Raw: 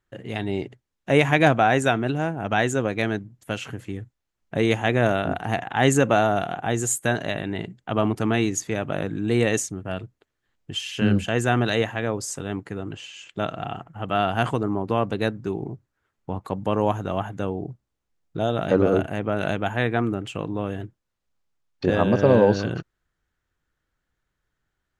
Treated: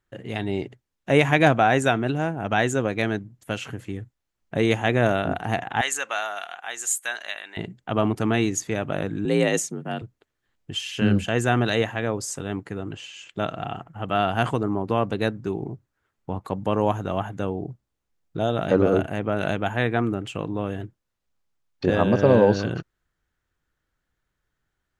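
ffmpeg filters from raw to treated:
-filter_complex "[0:a]asettb=1/sr,asplit=3[s0][s1][s2];[s0]atrim=end=5.814[s3];[s1]atrim=start=5.81:end=7.57,asetpts=PTS-STARTPTS,afade=t=in:d=0.004:c=qsin,afade=t=out:st=1.756:d=0.004:c=qsin,highpass=1300[s4];[s2]atrim=start=7.566[s5];[s3][s4]acrossfade=d=0.004:c1=hsin:c2=qsin[s6];[s6][s5]acrossfade=d=0.004:c1=qsin:c2=hsin,asettb=1/sr,asplit=3[s7][s8][s9];[s7]atrim=end=9.254[s10];[s8]atrim=start=9.25:end=10.02,asetpts=PTS-STARTPTS,afade=t=in:d=0.004:c=qsin,afade=t=out:st=0.766:d=0.004:c=qsin,afreqshift=50[s11];[s9]atrim=start=10.016[s12];[s10][s11]acrossfade=d=0.004:c1=hsin:c2=qsin[s13];[s13][s12]acrossfade=d=0.004:c1=qsin:c2=hsin"

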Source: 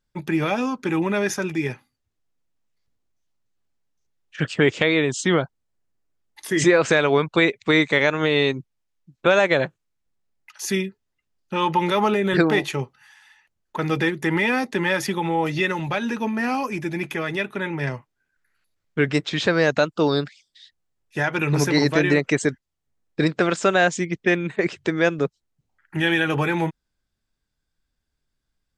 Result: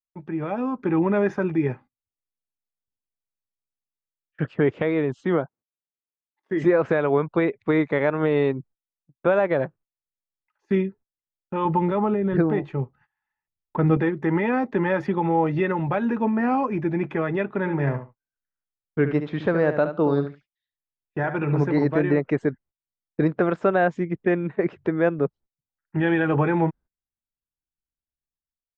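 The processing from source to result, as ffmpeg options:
-filter_complex "[0:a]asettb=1/sr,asplit=3[s0][s1][s2];[s0]atrim=end=5.214[s3];[s1]atrim=start=5.21:end=6.65,asetpts=PTS-STARTPTS,afade=t=in:d=0.004:c=qsin,afade=t=out:st=1.436:d=0.004:c=qsin,highpass=160[s4];[s2]atrim=start=6.646[s5];[s3][s4]acrossfade=d=0.004:c1=hsin:c2=qsin[s6];[s6][s5]acrossfade=d=0.004:c1=qsin:c2=hsin,asettb=1/sr,asplit=3[s7][s8][s9];[s7]atrim=end=11.654[s10];[s8]atrim=start=11.65:end=13.97,asetpts=PTS-STARTPTS,afade=t=in:d=0.004:c=qsin,afade=t=out:st=2.316:d=0.004:c=qsin,lowshelf=f=250:g=9.5[s11];[s9]atrim=start=13.966[s12];[s10][s11]acrossfade=d=0.004:c1=hsin:c2=qsin[s13];[s13][s12]acrossfade=d=0.004:c1=qsin:c2=hsin,asplit=3[s14][s15][s16];[s14]afade=t=out:st=17.64:d=0.02[s17];[s15]aecho=1:1:71|142:0.335|0.0536,afade=t=in:st=17.64:d=0.02,afade=t=out:st=21.62:d=0.02[s18];[s16]afade=t=in:st=21.62:d=0.02[s19];[s17][s18][s19]amix=inputs=3:normalize=0,lowpass=1200,agate=range=0.0708:threshold=0.00501:ratio=16:detection=peak,dynaudnorm=f=140:g=9:m=3.76,volume=0.422"

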